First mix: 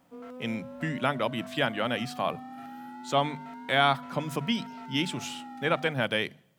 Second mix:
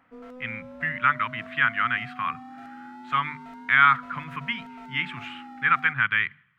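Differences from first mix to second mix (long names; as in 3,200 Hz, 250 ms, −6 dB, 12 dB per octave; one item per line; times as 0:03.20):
speech: add drawn EQ curve 110 Hz 0 dB, 620 Hz −26 dB, 1,200 Hz +11 dB, 2,100 Hz +10 dB, 5,600 Hz −23 dB
background: remove high-pass filter 80 Hz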